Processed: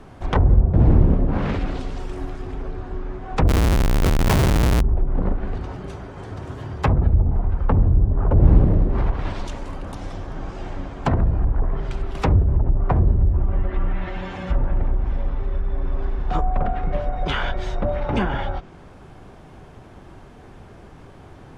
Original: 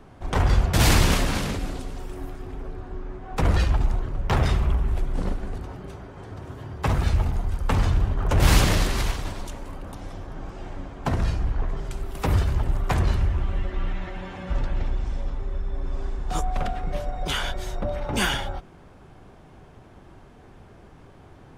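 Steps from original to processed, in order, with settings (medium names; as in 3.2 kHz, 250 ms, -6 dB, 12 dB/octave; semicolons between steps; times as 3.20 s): low-pass that closes with the level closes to 440 Hz, closed at -17 dBFS; 3.48–4.81 s: Schmitt trigger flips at -34.5 dBFS; trim +5 dB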